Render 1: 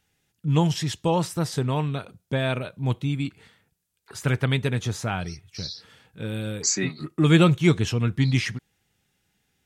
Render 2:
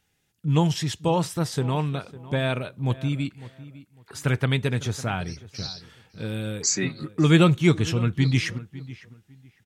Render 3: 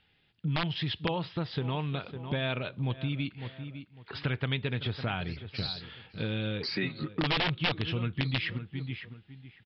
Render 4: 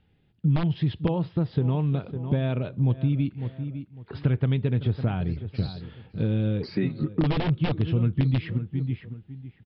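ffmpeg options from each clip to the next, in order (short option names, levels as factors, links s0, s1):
-filter_complex "[0:a]asplit=2[s0][s1];[s1]adelay=553,lowpass=f=2600:p=1,volume=0.141,asplit=2[s2][s3];[s3]adelay=553,lowpass=f=2600:p=1,volume=0.24[s4];[s0][s2][s4]amix=inputs=3:normalize=0"
-af "aresample=11025,aeval=exprs='(mod(3.98*val(0)+1,2)-1)/3.98':c=same,aresample=44100,acompressor=threshold=0.0282:ratio=5,lowpass=f=3300:t=q:w=2,volume=1.19"
-af "tiltshelf=f=830:g=10"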